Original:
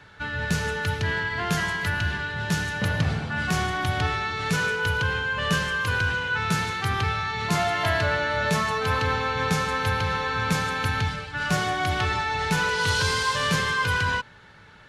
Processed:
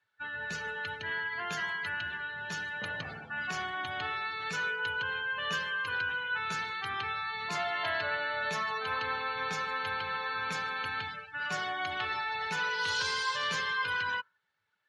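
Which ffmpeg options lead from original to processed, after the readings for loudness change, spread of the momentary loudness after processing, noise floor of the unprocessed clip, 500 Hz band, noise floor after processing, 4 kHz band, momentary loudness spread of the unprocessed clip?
-8.5 dB, 6 LU, -49 dBFS, -11.5 dB, -74 dBFS, -7.5 dB, 4 LU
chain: -af "afftdn=nr=23:nf=-34,highpass=f=970:p=1,volume=0.562"

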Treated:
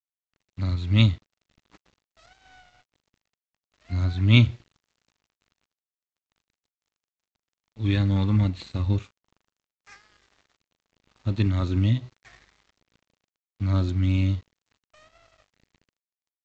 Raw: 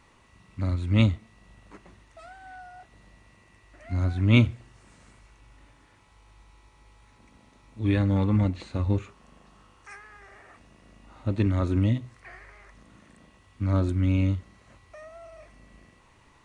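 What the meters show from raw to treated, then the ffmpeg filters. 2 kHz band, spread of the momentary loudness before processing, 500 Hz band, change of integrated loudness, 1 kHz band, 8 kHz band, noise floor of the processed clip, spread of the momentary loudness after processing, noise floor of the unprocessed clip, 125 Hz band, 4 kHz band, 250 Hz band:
+1.5 dB, 13 LU, -4.0 dB, +1.5 dB, -2.5 dB, no reading, under -85 dBFS, 13 LU, -59 dBFS, +2.0 dB, +6.5 dB, -0.5 dB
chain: -af "equalizer=f=125:t=o:w=1:g=5,equalizer=f=500:t=o:w=1:g=-4,equalizer=f=4000:t=o:w=1:g=10,aresample=16000,aeval=exprs='sgn(val(0))*max(abs(val(0))-0.00501,0)':c=same,aresample=44100,volume=0.891"

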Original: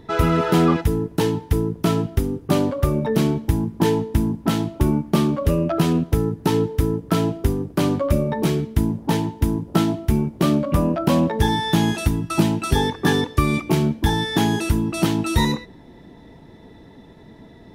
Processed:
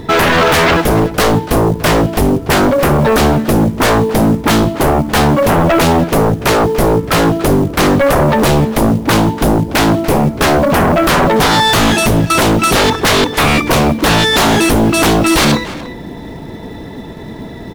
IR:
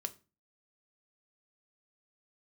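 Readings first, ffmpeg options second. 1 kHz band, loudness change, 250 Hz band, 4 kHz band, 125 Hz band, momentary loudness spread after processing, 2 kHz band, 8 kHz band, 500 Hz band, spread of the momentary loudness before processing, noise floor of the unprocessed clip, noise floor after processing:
+13.5 dB, +9.5 dB, +7.5 dB, +13.5 dB, +6.0 dB, 12 LU, +15.5 dB, +14.5 dB, +11.0 dB, 4 LU, -45 dBFS, -28 dBFS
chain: -filter_complex "[0:a]aeval=exprs='0.631*sin(PI/2*6.31*val(0)/0.631)':c=same,acrusher=bits=7:mode=log:mix=0:aa=0.000001,asplit=2[s0][s1];[s1]adelay=290,highpass=300,lowpass=3400,asoftclip=type=hard:threshold=0.237,volume=0.355[s2];[s0][s2]amix=inputs=2:normalize=0,volume=0.708"

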